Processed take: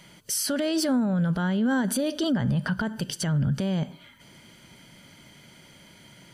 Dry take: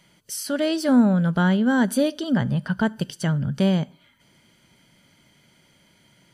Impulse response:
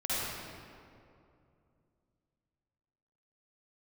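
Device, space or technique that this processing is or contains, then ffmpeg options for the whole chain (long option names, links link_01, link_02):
stacked limiters: -af "alimiter=limit=-13.5dB:level=0:latency=1:release=174,alimiter=limit=-19dB:level=0:latency=1:release=92,alimiter=level_in=1dB:limit=-24dB:level=0:latency=1:release=19,volume=-1dB,volume=7dB"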